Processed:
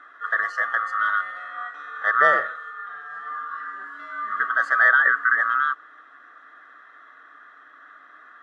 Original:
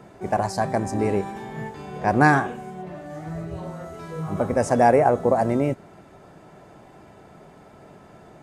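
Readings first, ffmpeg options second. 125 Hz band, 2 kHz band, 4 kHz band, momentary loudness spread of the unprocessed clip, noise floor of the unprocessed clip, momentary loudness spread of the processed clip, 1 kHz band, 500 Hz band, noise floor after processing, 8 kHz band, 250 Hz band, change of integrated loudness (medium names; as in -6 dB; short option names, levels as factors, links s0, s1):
under -30 dB, +10.5 dB, no reading, 18 LU, -49 dBFS, 18 LU, -0.5 dB, -12.0 dB, -50 dBFS, under -15 dB, under -25 dB, +1.0 dB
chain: -af "afftfilt=real='real(if(lt(b,960),b+48*(1-2*mod(floor(b/48),2)),b),0)':imag='imag(if(lt(b,960),b+48*(1-2*mod(floor(b/48),2)),b),0)':win_size=2048:overlap=0.75,highpass=510,lowpass=2700"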